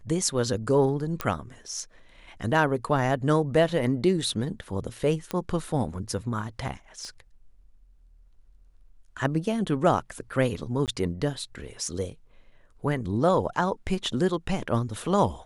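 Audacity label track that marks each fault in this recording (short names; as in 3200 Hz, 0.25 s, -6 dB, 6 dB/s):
1.210000	1.210000	pop -12 dBFS
5.310000	5.310000	pop -15 dBFS
7.050000	7.050000	pop -29 dBFS
10.860000	10.880000	gap 18 ms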